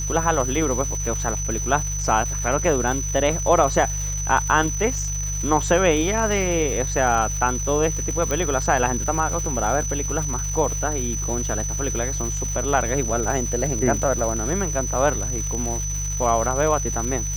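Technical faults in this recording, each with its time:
surface crackle 510 per second −29 dBFS
mains hum 50 Hz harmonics 3 −28 dBFS
whistle 6,000 Hz −27 dBFS
0:08.31: click −10 dBFS

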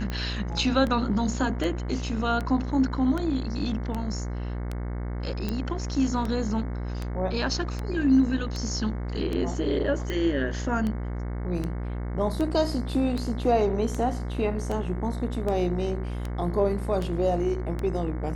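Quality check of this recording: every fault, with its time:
mains buzz 60 Hz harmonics 37 −31 dBFS
scratch tick 78 rpm −18 dBFS
0:05.49: click

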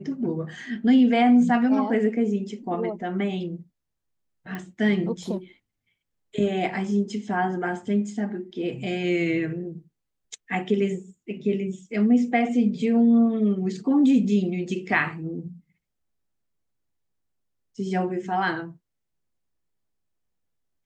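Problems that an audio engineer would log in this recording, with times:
0:04.55: click −21 dBFS

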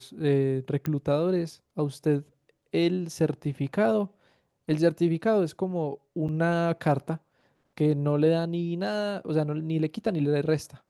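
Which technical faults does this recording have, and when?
0:00.86: click −17 dBFS
0:06.28–0:06.29: drop-out 8 ms

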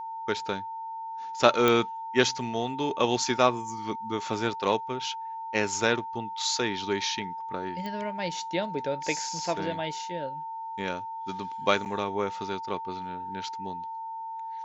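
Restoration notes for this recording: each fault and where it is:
whistle 900 Hz −34 dBFS
0:01.68: click −9 dBFS
0:07.86: click −23 dBFS
0:11.85–0:11.86: drop-out 8.3 ms

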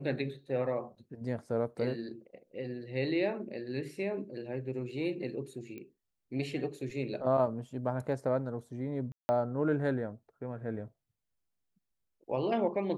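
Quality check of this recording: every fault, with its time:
0:05.78: click −32 dBFS
0:09.12–0:09.29: drop-out 170 ms

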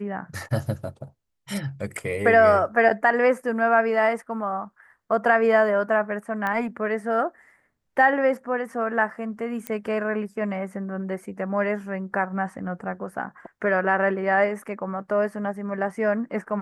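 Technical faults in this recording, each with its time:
0:06.47: click −16 dBFS
0:09.67: click −14 dBFS

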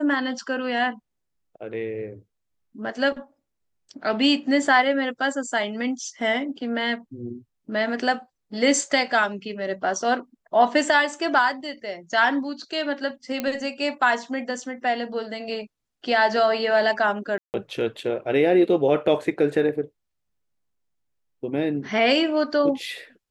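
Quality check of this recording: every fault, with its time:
0:13.40: click −11 dBFS
0:17.38–0:17.54: drop-out 159 ms

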